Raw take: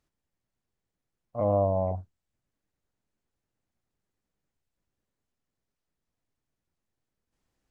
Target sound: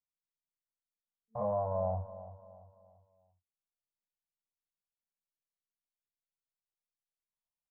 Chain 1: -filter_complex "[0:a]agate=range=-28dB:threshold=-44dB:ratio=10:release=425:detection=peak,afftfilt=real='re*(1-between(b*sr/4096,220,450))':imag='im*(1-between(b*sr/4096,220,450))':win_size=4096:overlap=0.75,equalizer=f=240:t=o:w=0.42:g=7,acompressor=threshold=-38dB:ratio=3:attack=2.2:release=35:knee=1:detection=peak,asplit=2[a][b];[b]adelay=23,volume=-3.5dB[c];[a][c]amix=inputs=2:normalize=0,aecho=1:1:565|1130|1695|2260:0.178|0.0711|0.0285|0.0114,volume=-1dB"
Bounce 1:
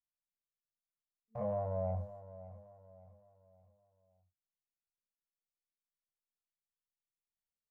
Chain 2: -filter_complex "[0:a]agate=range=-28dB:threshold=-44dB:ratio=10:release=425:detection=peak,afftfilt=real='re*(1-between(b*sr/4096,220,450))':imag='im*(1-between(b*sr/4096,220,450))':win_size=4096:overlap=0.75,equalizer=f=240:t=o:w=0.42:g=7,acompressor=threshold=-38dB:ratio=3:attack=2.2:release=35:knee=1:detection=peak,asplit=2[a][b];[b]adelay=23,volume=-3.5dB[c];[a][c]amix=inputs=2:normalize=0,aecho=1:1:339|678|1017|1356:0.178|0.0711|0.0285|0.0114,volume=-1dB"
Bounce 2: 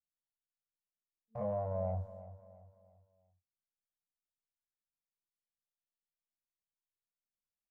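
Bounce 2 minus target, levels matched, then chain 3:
1000 Hz band -3.5 dB
-filter_complex "[0:a]agate=range=-28dB:threshold=-44dB:ratio=10:release=425:detection=peak,afftfilt=real='re*(1-between(b*sr/4096,220,450))':imag='im*(1-between(b*sr/4096,220,450))':win_size=4096:overlap=0.75,equalizer=f=240:t=o:w=0.42:g=7,acompressor=threshold=-38dB:ratio=3:attack=2.2:release=35:knee=1:detection=peak,lowpass=f=1k:t=q:w=3.1,asplit=2[a][b];[b]adelay=23,volume=-3.5dB[c];[a][c]amix=inputs=2:normalize=0,aecho=1:1:339|678|1017|1356:0.178|0.0711|0.0285|0.0114,volume=-1dB"

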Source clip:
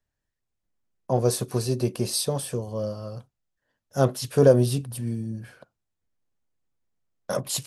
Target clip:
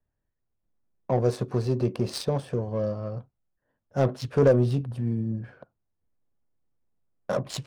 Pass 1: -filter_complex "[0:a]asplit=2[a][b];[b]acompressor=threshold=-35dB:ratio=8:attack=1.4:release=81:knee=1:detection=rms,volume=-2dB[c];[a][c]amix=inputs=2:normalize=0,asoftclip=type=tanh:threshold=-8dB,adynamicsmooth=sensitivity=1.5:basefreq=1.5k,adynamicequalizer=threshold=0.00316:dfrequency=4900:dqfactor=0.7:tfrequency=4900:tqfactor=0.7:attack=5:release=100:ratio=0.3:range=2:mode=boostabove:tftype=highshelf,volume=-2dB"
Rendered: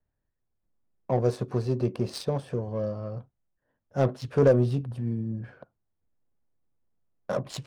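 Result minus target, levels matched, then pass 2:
compressor: peak gain reduction +9 dB
-filter_complex "[0:a]asplit=2[a][b];[b]acompressor=threshold=-25dB:ratio=8:attack=1.4:release=81:knee=1:detection=rms,volume=-2dB[c];[a][c]amix=inputs=2:normalize=0,asoftclip=type=tanh:threshold=-8dB,adynamicsmooth=sensitivity=1.5:basefreq=1.5k,adynamicequalizer=threshold=0.00316:dfrequency=4900:dqfactor=0.7:tfrequency=4900:tqfactor=0.7:attack=5:release=100:ratio=0.3:range=2:mode=boostabove:tftype=highshelf,volume=-2dB"

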